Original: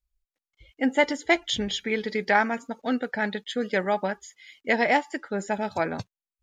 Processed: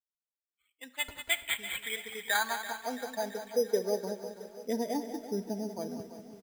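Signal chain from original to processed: expander on every frequency bin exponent 1.5; high-pass 81 Hz 6 dB/octave; band-stop 1.3 kHz, Q 6.3; comb 4.4 ms, depth 48%; in parallel at +2.5 dB: compression, threshold -31 dBFS, peak gain reduction 15.5 dB; on the sum: band-pass sweep 3.8 kHz -> 300 Hz, 0.95–4.23 s; careless resampling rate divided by 8×, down none, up hold; on a send: feedback delay 335 ms, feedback 58%, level -13 dB; on the sum: Schroeder reverb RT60 0.66 s, combs from 28 ms, DRR 16 dB; bit-crushed delay 191 ms, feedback 35%, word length 9-bit, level -10 dB; trim -2.5 dB

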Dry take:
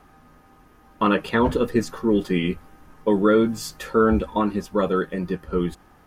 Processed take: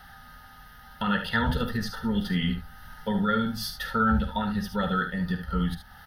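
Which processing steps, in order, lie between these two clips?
high-order bell 500 Hz -11.5 dB 1.2 oct; peak limiter -15 dBFS, peak gain reduction 6.5 dB; Butterworth band-stop 1.1 kHz, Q 7.1; static phaser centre 1.6 kHz, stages 8; early reflections 49 ms -11.5 dB, 73 ms -9.5 dB; tape noise reduction on one side only encoder only; trim +3.5 dB

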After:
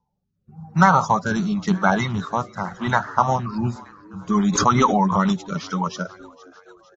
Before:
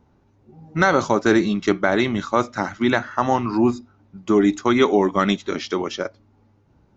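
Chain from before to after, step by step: coarse spectral quantiser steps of 30 dB; treble shelf 4.4 kHz -11.5 dB; gate -54 dBFS, range -16 dB; FFT filter 120 Hz 0 dB, 180 Hz +8 dB, 300 Hz -17 dB, 950 Hz +7 dB, 2.1 kHz -5 dB, 5.3 kHz +8 dB; frequency-shifting echo 465 ms, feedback 59%, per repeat +89 Hz, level -23 dB; rotary cabinet horn 0.9 Hz, later 7 Hz, at 3.63 s; 4.47–5.31 s: swell ahead of each attack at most 54 dB/s; trim +2.5 dB

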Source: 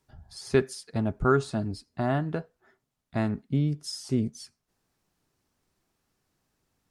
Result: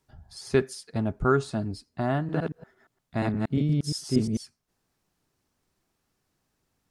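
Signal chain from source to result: 2.17–4.37 s: chunks repeated in reverse 117 ms, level 0 dB

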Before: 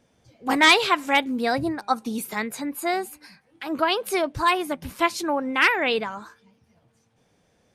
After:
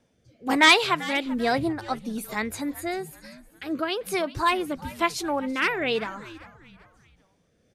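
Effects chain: rotary cabinet horn 1.1 Hz; frequency-shifting echo 391 ms, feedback 40%, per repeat -130 Hz, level -17.5 dB

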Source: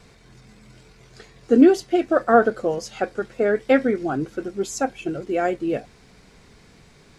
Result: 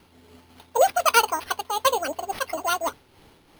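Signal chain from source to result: dynamic bell 2.5 kHz, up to +4 dB, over -38 dBFS, Q 1; speed mistake 7.5 ips tape played at 15 ips; careless resampling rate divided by 6×, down none, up hold; random flutter of the level, depth 60%

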